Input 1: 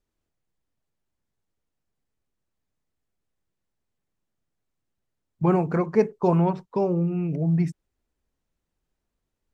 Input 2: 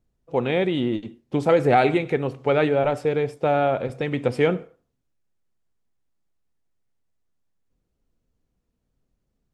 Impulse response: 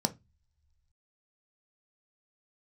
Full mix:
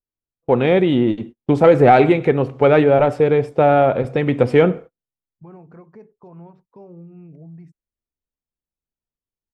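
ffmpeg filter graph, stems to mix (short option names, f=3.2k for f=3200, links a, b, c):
-filter_complex "[0:a]alimiter=limit=-19dB:level=0:latency=1:release=137,volume=-15dB[a];[1:a]agate=range=-35dB:threshold=-41dB:ratio=16:detection=peak,acontrast=35,adelay=150,volume=2.5dB[b];[a][b]amix=inputs=2:normalize=0,highshelf=f=3.3k:g=-11"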